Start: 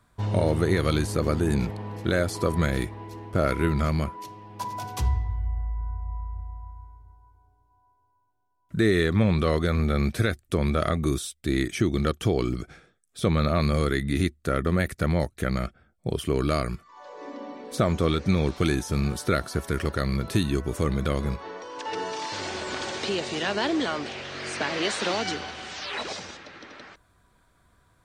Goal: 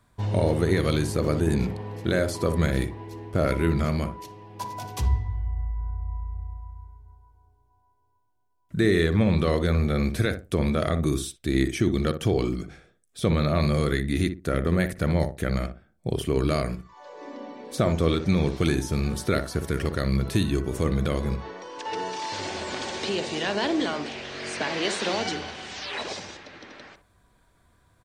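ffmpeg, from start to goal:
ffmpeg -i in.wav -filter_complex "[0:a]equalizer=frequency=1300:width=3.7:gain=-4,asplit=2[link_01][link_02];[link_02]adelay=60,lowpass=frequency=1000:poles=1,volume=-7dB,asplit=2[link_03][link_04];[link_04]adelay=60,lowpass=frequency=1000:poles=1,volume=0.25,asplit=2[link_05][link_06];[link_06]adelay=60,lowpass=frequency=1000:poles=1,volume=0.25[link_07];[link_01][link_03][link_05][link_07]amix=inputs=4:normalize=0" out.wav

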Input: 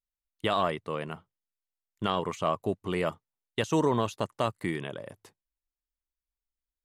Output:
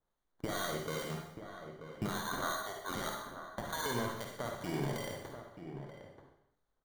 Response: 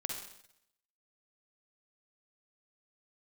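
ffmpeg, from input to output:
-filter_complex "[0:a]asettb=1/sr,asplit=3[link_01][link_02][link_03];[link_01]atrim=end=2.114[link_04];[link_02]atrim=start=2.11:end=3.86,asetpts=PTS-STARTPTS,afade=type=in:duration=0.004:curve=qsin,afade=type=out:start_time=1.746:duration=0.004:curve=qsin,highpass=frequency=770:width=0.5412,highpass=frequency=770:width=1.3066[link_05];[link_03]atrim=start=3.856[link_06];[link_04][link_05]acrossfade=duration=0.004:curve1=hsin:curve2=qsin[link_07];[link_07][link_06]acrossfade=duration=0.004:curve1=qsin:curve2=hsin,acompressor=threshold=-31dB:ratio=6,alimiter=level_in=5dB:limit=-24dB:level=0:latency=1:release=475,volume=-5dB,acrusher=samples=17:mix=1:aa=0.000001,asoftclip=type=tanh:threshold=-32.5dB,acrossover=split=1700[link_08][link_09];[link_08]aeval=exprs='val(0)*(1-0.5/2+0.5/2*cos(2*PI*2.5*n/s))':channel_layout=same[link_10];[link_09]aeval=exprs='val(0)*(1-0.5/2-0.5/2*cos(2*PI*2.5*n/s))':channel_layout=same[link_11];[link_10][link_11]amix=inputs=2:normalize=0,asplit=2[link_12][link_13];[link_13]adelay=932.9,volume=-9dB,highshelf=frequency=4000:gain=-21[link_14];[link_12][link_14]amix=inputs=2:normalize=0[link_15];[1:a]atrim=start_sample=2205[link_16];[link_15][link_16]afir=irnorm=-1:irlink=0,volume=8.5dB"

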